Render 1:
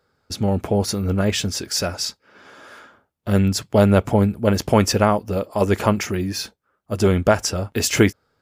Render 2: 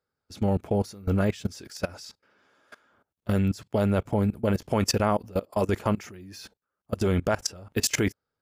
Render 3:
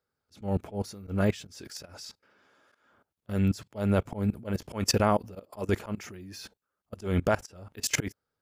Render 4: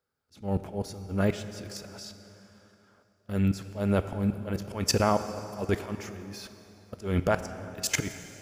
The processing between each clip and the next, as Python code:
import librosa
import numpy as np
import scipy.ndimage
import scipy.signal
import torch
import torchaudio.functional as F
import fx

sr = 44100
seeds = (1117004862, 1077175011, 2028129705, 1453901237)

y1 = fx.level_steps(x, sr, step_db=21)
y1 = F.gain(torch.from_numpy(y1), -1.5).numpy()
y2 = fx.auto_swell(y1, sr, attack_ms=169.0)
y3 = fx.rev_plate(y2, sr, seeds[0], rt60_s=3.4, hf_ratio=0.75, predelay_ms=0, drr_db=10.0)